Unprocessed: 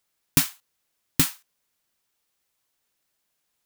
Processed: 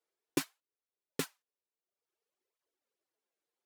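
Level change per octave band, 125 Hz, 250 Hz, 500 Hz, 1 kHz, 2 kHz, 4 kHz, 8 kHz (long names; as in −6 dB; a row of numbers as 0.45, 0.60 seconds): −18.5, −9.0, +1.0, −9.5, −11.5, −14.5, −17.0 decibels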